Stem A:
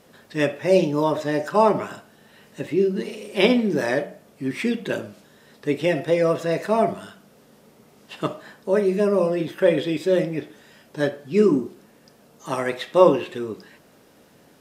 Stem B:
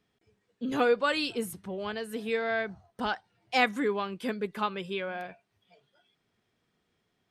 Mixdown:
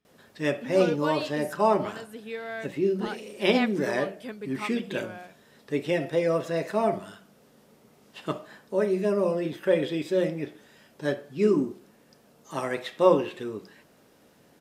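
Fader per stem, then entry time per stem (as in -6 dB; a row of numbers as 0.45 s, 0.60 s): -5.0 dB, -6.0 dB; 0.05 s, 0.00 s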